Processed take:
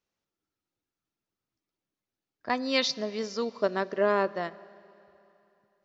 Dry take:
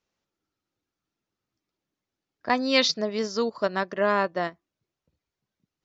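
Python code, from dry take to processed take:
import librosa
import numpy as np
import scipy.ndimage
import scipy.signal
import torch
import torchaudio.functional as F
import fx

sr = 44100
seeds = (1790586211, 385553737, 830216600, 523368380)

y = fx.peak_eq(x, sr, hz=400.0, db=7.0, octaves=1.3, at=(3.62, 4.28))
y = fx.rev_schroeder(y, sr, rt60_s=3.0, comb_ms=26, drr_db=19.0)
y = y * 10.0 ** (-5.0 / 20.0)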